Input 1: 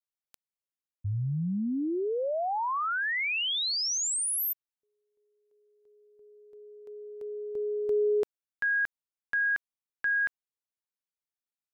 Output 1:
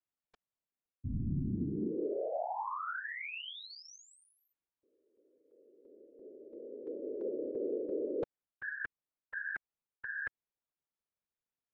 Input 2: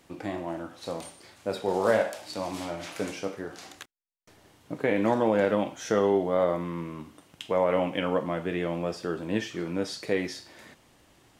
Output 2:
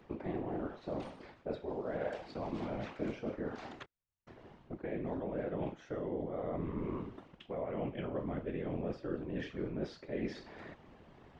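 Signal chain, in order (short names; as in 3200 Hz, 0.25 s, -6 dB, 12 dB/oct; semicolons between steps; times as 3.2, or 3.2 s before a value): dynamic EQ 910 Hz, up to -6 dB, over -40 dBFS, Q 0.98; reverse; compressor 12:1, threshold -37 dBFS; reverse; tape spacing loss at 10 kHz 37 dB; whisperiser; gain +4.5 dB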